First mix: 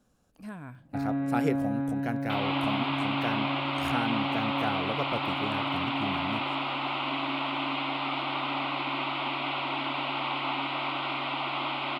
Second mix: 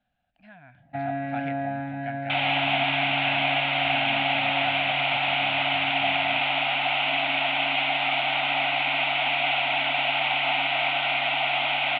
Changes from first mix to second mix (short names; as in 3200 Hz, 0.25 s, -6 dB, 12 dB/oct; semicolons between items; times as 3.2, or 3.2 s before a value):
speech -10.0 dB; master: add EQ curve 140 Hz 0 dB, 270 Hz -4 dB, 420 Hz -19 dB, 710 Hz +13 dB, 1100 Hz -8 dB, 1600 Hz +10 dB, 2500 Hz +11 dB, 3600 Hz +7 dB, 6500 Hz -24 dB